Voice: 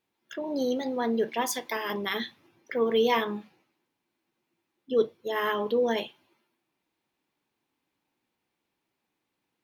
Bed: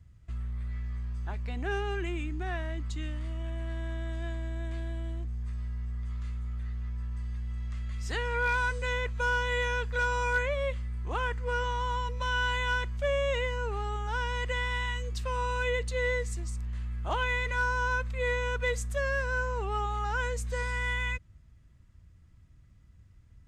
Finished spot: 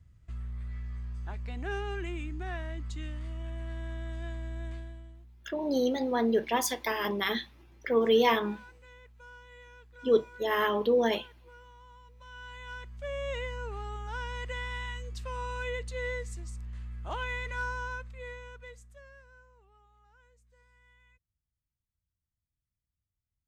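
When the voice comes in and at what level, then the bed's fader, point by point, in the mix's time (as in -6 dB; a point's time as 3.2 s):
5.15 s, +0.5 dB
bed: 4.69 s -3 dB
5.42 s -23 dB
12.02 s -23 dB
13.32 s -5.5 dB
17.68 s -5.5 dB
19.77 s -32.5 dB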